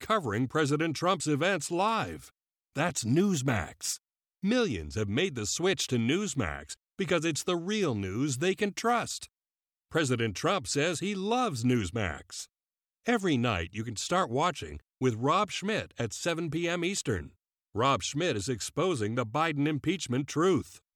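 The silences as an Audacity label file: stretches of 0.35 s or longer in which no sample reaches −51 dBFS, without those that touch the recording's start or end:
2.300000	2.750000	silence
3.970000	4.430000	silence
9.260000	9.910000	silence
12.450000	13.060000	silence
17.290000	17.750000	silence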